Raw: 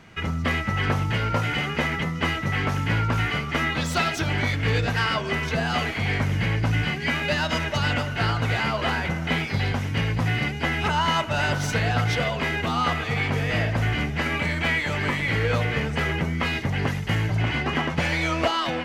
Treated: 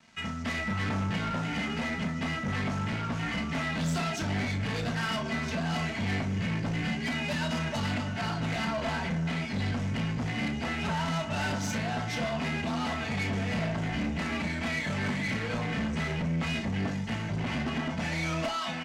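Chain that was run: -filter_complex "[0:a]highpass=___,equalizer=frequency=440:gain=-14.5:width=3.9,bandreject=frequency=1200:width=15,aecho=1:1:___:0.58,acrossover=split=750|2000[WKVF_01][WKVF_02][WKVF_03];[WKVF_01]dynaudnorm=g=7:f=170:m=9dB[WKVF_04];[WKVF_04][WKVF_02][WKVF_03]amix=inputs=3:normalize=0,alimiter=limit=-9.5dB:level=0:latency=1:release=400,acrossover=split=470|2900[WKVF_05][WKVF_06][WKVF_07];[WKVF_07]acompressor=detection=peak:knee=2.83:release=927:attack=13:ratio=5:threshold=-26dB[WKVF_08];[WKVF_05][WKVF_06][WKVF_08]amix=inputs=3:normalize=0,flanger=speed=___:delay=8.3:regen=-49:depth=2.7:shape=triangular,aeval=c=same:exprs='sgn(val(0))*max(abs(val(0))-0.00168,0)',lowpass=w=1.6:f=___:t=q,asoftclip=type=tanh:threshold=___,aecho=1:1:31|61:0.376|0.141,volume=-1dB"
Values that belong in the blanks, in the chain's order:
79, 4.5, 0.4, 7300, -27dB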